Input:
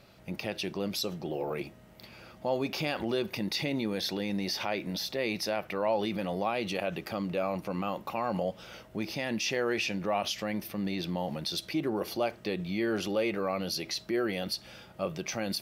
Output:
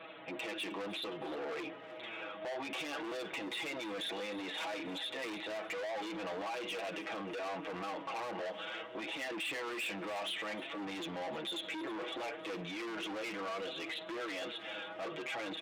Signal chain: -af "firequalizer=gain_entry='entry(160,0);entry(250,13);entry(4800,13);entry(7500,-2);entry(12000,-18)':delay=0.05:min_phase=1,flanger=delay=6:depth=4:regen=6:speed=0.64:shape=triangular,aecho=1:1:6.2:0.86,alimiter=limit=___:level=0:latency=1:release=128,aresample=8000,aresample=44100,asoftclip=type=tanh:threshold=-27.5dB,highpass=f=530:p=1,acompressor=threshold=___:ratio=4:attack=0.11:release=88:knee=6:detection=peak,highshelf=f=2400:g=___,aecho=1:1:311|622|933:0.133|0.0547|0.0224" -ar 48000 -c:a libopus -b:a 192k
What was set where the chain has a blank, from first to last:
-10.5dB, -35dB, -2.5